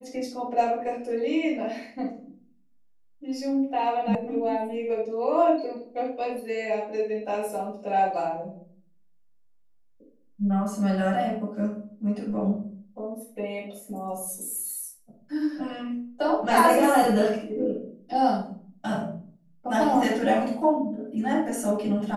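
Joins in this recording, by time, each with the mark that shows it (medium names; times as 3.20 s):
4.15 s: sound stops dead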